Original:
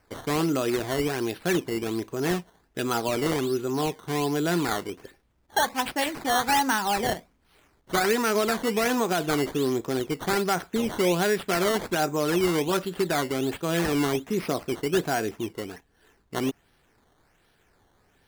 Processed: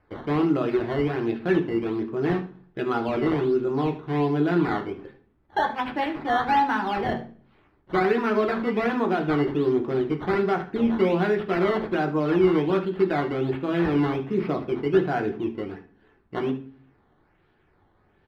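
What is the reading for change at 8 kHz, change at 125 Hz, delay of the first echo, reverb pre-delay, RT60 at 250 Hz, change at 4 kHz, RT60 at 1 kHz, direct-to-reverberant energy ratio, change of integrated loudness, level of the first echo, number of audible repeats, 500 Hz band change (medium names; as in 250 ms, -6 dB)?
under -25 dB, +3.0 dB, 75 ms, 3 ms, 0.65 s, -8.5 dB, 0.40 s, 2.0 dB, +1.5 dB, -16.0 dB, 1, +2.5 dB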